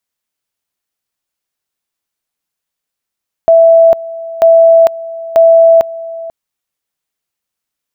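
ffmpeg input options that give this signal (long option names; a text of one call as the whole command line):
ffmpeg -f lavfi -i "aevalsrc='pow(10,(-2-18.5*gte(mod(t,0.94),0.45))/20)*sin(2*PI*661*t)':duration=2.82:sample_rate=44100" out.wav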